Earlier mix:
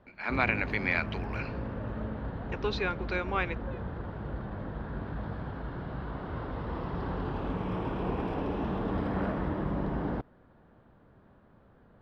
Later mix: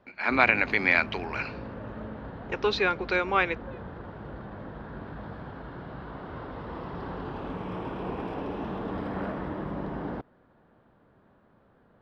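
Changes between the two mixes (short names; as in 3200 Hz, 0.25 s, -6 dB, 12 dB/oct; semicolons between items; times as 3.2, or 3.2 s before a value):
speech +7.0 dB; master: add low shelf 120 Hz -9 dB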